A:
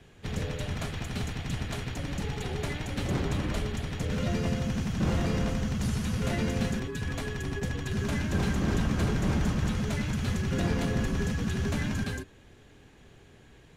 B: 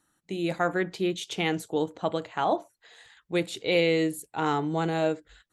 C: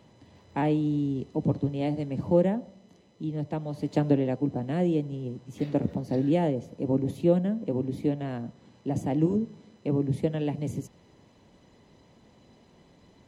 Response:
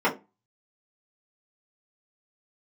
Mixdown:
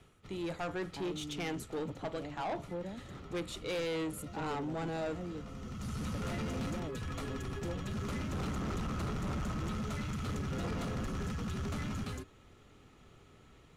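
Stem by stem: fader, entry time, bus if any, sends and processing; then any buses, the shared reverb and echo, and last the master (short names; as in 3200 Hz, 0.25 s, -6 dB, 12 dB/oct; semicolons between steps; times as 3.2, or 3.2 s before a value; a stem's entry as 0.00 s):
-5.0 dB, 0.00 s, no send, bell 1300 Hz +13 dB 0.25 oct; notch 1600 Hz, Q 5.6; auto duck -14 dB, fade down 0.30 s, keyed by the second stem
-6.0 dB, 0.00 s, no send, dry
-16.5 dB, 0.40 s, no send, dry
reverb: off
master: soft clip -32 dBFS, distortion -10 dB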